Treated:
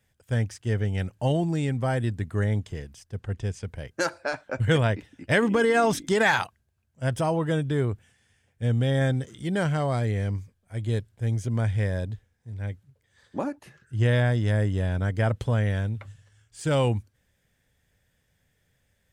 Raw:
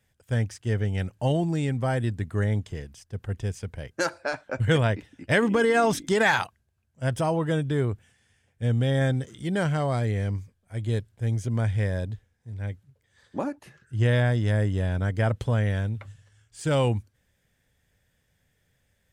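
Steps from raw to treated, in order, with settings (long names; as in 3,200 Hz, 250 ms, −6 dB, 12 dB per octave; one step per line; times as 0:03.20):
0:03.20–0:03.65: low-pass filter 8,700 Hz 12 dB per octave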